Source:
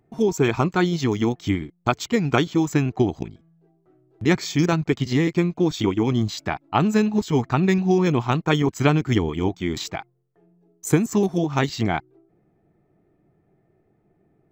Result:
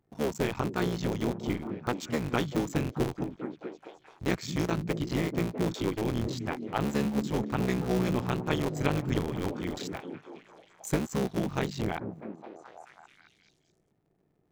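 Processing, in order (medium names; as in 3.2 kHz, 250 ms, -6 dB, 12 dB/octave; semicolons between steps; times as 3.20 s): cycle switcher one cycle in 3, muted; repeats whose band climbs or falls 215 ms, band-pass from 160 Hz, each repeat 0.7 oct, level -2.5 dB; trim -8.5 dB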